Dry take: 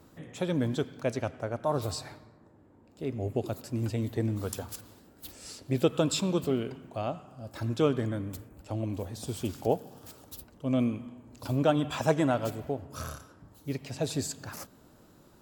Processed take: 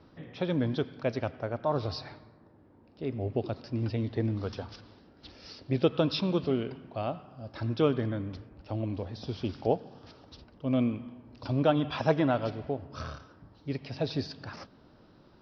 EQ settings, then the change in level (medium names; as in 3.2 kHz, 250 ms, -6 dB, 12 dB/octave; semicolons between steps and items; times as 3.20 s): steep low-pass 5.5 kHz 96 dB/octave; 0.0 dB